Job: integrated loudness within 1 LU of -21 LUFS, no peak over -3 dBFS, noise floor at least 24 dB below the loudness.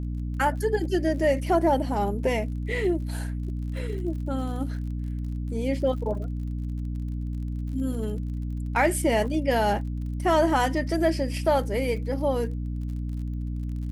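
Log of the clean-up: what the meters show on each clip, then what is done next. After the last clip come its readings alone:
ticks 46/s; hum 60 Hz; harmonics up to 300 Hz; hum level -28 dBFS; loudness -27.0 LUFS; peak -10.5 dBFS; loudness target -21.0 LUFS
-> de-click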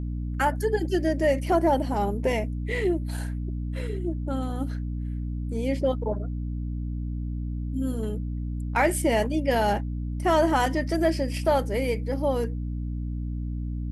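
ticks 0.072/s; hum 60 Hz; harmonics up to 300 Hz; hum level -28 dBFS
-> notches 60/120/180/240/300 Hz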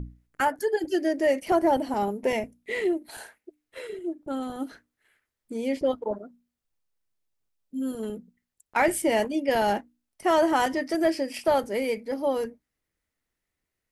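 hum none; loudness -27.0 LUFS; peak -12.0 dBFS; loudness target -21.0 LUFS
-> gain +6 dB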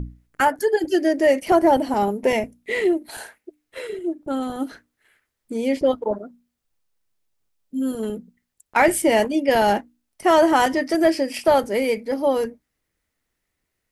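loudness -21.0 LUFS; peak -6.0 dBFS; noise floor -78 dBFS

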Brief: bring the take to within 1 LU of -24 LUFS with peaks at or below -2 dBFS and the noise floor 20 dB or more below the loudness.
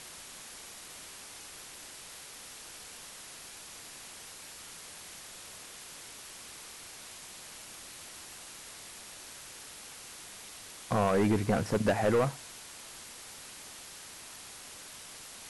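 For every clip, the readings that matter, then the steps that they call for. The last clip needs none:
clipped 0.5%; flat tops at -21.0 dBFS; noise floor -48 dBFS; noise floor target -58 dBFS; loudness -37.5 LUFS; peak -21.0 dBFS; loudness target -24.0 LUFS
-> clip repair -21 dBFS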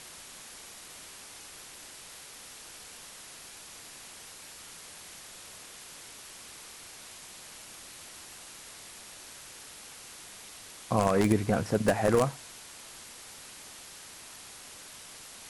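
clipped 0.0%; noise floor -48 dBFS; noise floor target -56 dBFS
-> noise print and reduce 8 dB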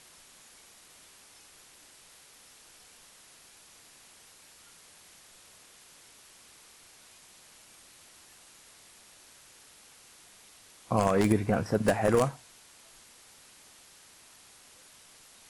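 noise floor -56 dBFS; loudness -27.0 LUFS; peak -12.0 dBFS; loudness target -24.0 LUFS
-> gain +3 dB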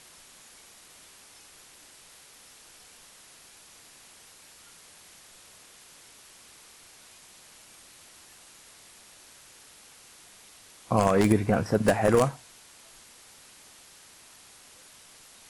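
loudness -24.0 LUFS; peak -9.0 dBFS; noise floor -53 dBFS

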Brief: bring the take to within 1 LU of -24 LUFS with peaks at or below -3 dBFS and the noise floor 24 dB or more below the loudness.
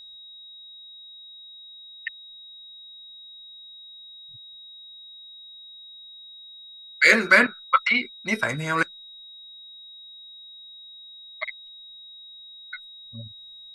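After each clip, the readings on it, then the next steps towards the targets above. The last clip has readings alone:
steady tone 3800 Hz; tone level -42 dBFS; loudness -21.5 LUFS; peak -3.0 dBFS; loudness target -24.0 LUFS
-> notch 3800 Hz, Q 30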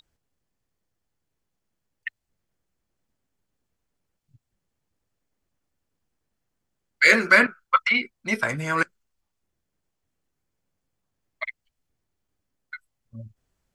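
steady tone none; loudness -20.0 LUFS; peak -3.0 dBFS; loudness target -24.0 LUFS
-> gain -4 dB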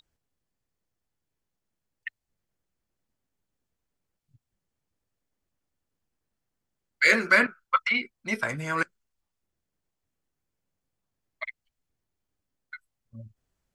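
loudness -24.0 LUFS; peak -7.0 dBFS; noise floor -84 dBFS

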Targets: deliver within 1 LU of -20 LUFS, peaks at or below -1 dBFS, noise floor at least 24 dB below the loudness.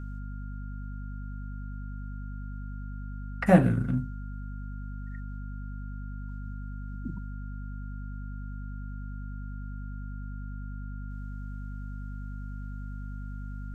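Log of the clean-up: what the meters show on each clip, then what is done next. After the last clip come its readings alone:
hum 50 Hz; harmonics up to 250 Hz; hum level -35 dBFS; steady tone 1400 Hz; tone level -51 dBFS; loudness -35.0 LUFS; peak -5.0 dBFS; loudness target -20.0 LUFS
-> notches 50/100/150/200/250 Hz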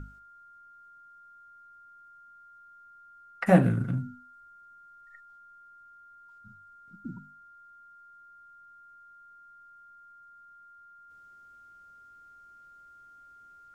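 hum none; steady tone 1400 Hz; tone level -51 dBFS
-> notch 1400 Hz, Q 30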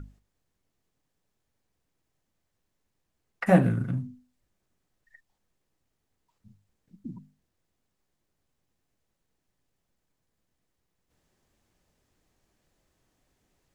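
steady tone none; loudness -25.0 LUFS; peak -6.5 dBFS; loudness target -20.0 LUFS
-> gain +5 dB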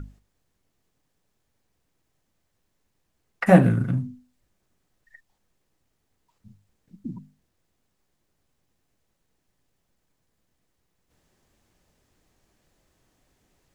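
loudness -20.0 LUFS; peak -1.5 dBFS; noise floor -75 dBFS

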